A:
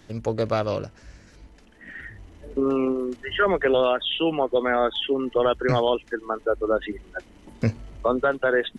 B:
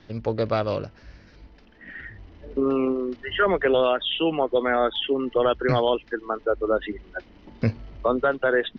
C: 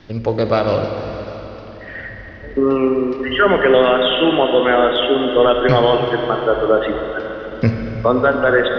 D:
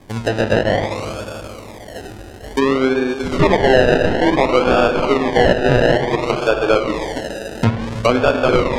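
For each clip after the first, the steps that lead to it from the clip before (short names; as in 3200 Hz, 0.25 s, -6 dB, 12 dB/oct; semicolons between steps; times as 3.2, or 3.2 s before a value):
steep low-pass 5300 Hz 48 dB/oct
reverb RT60 4.2 s, pre-delay 35 ms, DRR 3.5 dB; gain +7 dB
tracing distortion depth 0.18 ms; decimation with a swept rate 31×, swing 60% 0.57 Hz; treble ducked by the level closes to 3000 Hz, closed at -12.5 dBFS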